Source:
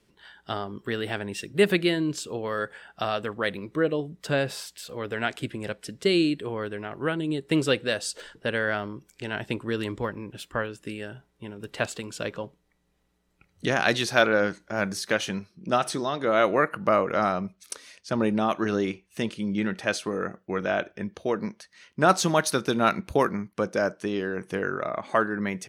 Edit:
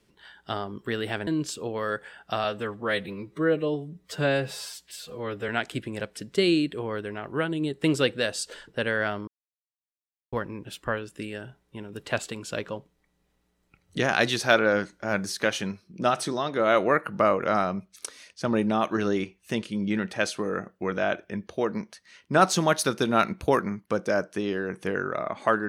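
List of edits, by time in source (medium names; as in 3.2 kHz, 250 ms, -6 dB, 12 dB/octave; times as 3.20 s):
1.27–1.96 s: delete
3.13–5.16 s: stretch 1.5×
8.95–10.00 s: mute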